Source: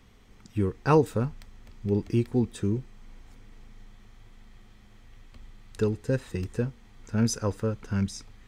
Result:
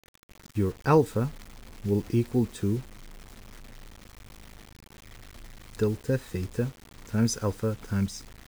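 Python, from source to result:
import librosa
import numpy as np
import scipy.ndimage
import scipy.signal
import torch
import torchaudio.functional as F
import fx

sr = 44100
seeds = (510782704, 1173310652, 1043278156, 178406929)

y = fx.notch(x, sr, hz=2800.0, q=13.0)
y = fx.quant_dither(y, sr, seeds[0], bits=8, dither='none')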